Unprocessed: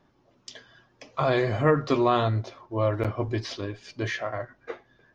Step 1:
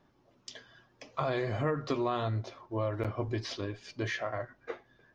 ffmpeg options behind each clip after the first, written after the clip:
-af "acompressor=threshold=0.0501:ratio=3,volume=0.708"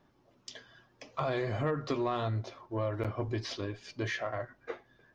-af "asoftclip=type=tanh:threshold=0.106"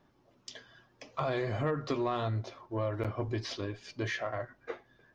-af anull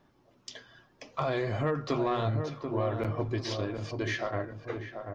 -filter_complex "[0:a]asplit=2[s0][s1];[s1]adelay=737,lowpass=f=940:p=1,volume=0.562,asplit=2[s2][s3];[s3]adelay=737,lowpass=f=940:p=1,volume=0.46,asplit=2[s4][s5];[s5]adelay=737,lowpass=f=940:p=1,volume=0.46,asplit=2[s6][s7];[s7]adelay=737,lowpass=f=940:p=1,volume=0.46,asplit=2[s8][s9];[s9]adelay=737,lowpass=f=940:p=1,volume=0.46,asplit=2[s10][s11];[s11]adelay=737,lowpass=f=940:p=1,volume=0.46[s12];[s0][s2][s4][s6][s8][s10][s12]amix=inputs=7:normalize=0,volume=1.26"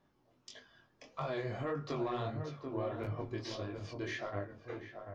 -af "flanger=delay=20:depth=4.5:speed=1.6,volume=0.596"

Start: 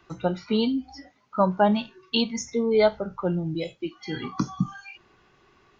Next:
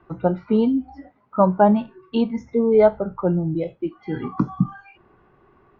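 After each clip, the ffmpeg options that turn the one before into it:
-af "lowpass=1200,volume=1.88"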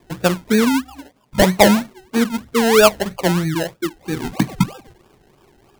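-af "acrusher=samples=30:mix=1:aa=0.000001:lfo=1:lforange=18:lforate=3.1,volume=1.41"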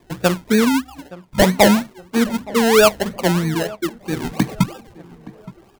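-filter_complex "[0:a]asoftclip=type=hard:threshold=0.531,asplit=2[s0][s1];[s1]adelay=870,lowpass=f=1400:p=1,volume=0.112,asplit=2[s2][s3];[s3]adelay=870,lowpass=f=1400:p=1,volume=0.43,asplit=2[s4][s5];[s5]adelay=870,lowpass=f=1400:p=1,volume=0.43[s6];[s0][s2][s4][s6]amix=inputs=4:normalize=0"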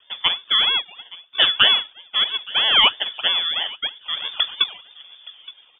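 -af "aexciter=amount=2:drive=4:freq=2100,lowpass=f=3100:t=q:w=0.5098,lowpass=f=3100:t=q:w=0.6013,lowpass=f=3100:t=q:w=0.9,lowpass=f=3100:t=q:w=2.563,afreqshift=-3600,volume=0.668"

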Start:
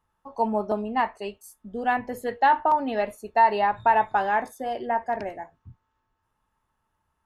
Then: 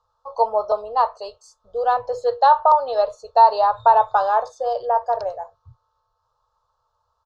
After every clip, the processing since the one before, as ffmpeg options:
-af "firequalizer=gain_entry='entry(120,0);entry(190,-25);entry(310,-26);entry(480,11);entry(790,4);entry(1200,11);entry(2000,-19);entry(4100,12);entry(7100,2);entry(11000,-28)':delay=0.05:min_phase=1"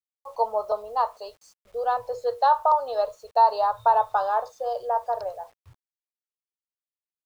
-af "acrusher=bits=8:mix=0:aa=0.000001,volume=0.531"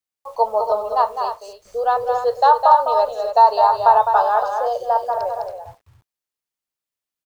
-af "aecho=1:1:207|277:0.447|0.355,volume=2"

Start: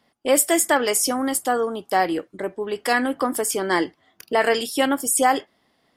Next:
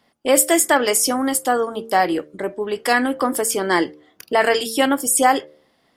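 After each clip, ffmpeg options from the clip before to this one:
-af "bandreject=f=75.27:t=h:w=4,bandreject=f=150.54:t=h:w=4,bandreject=f=225.81:t=h:w=4,bandreject=f=301.08:t=h:w=4,bandreject=f=376.35:t=h:w=4,bandreject=f=451.62:t=h:w=4,bandreject=f=526.89:t=h:w=4,bandreject=f=602.16:t=h:w=4,volume=1.41"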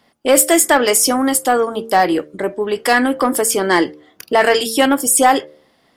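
-af "acontrast=48,volume=0.891"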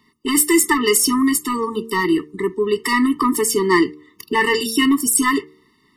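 -af "afftfilt=real='re*eq(mod(floor(b*sr/1024/440),2),0)':imag='im*eq(mod(floor(b*sr/1024/440),2),0)':win_size=1024:overlap=0.75,volume=1.12"

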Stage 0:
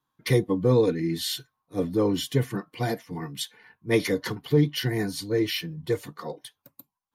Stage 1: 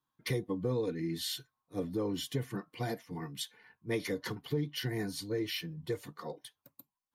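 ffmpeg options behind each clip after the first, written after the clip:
-af "acompressor=threshold=0.0562:ratio=2.5,volume=0.473"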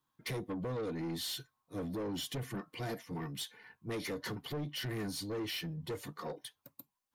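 -filter_complex "[0:a]asplit=2[s0][s1];[s1]alimiter=level_in=2.66:limit=0.0631:level=0:latency=1,volume=0.376,volume=1[s2];[s0][s2]amix=inputs=2:normalize=0,asoftclip=type=tanh:threshold=0.0266,volume=0.75"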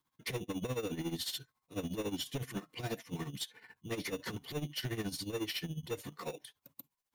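-filter_complex "[0:a]acrossover=split=1000[s0][s1];[s0]acrusher=samples=14:mix=1:aa=0.000001[s2];[s2][s1]amix=inputs=2:normalize=0,tremolo=f=14:d=0.77,volume=1.5"

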